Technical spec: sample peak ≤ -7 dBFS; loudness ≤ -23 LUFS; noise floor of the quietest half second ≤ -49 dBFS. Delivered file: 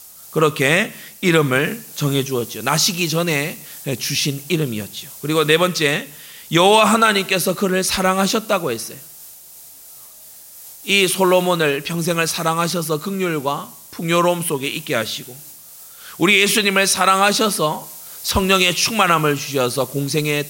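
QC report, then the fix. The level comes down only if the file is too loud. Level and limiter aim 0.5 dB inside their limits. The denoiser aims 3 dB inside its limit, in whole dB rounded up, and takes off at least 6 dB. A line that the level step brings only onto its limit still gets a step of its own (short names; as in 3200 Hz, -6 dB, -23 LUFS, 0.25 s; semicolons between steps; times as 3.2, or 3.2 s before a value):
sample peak -1.5 dBFS: fail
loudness -17.5 LUFS: fail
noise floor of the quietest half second -41 dBFS: fail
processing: denoiser 6 dB, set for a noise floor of -41 dBFS; gain -6 dB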